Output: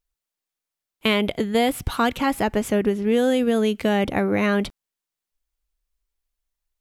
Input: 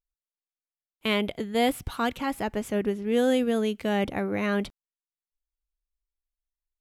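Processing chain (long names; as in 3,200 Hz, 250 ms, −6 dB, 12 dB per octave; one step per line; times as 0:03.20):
downward compressor, threshold −24 dBFS, peak gain reduction 6 dB
level +8.5 dB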